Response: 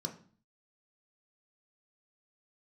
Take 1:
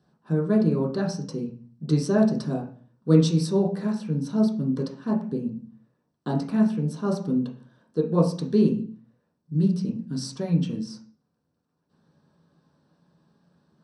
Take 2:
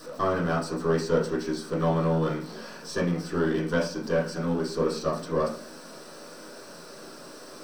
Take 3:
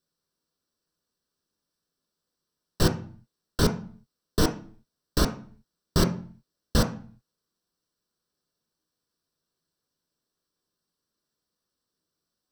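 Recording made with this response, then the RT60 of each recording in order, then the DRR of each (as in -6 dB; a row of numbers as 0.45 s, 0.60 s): 3; 0.45 s, 0.45 s, 0.45 s; -2.5 dB, -7.0 dB, 3.0 dB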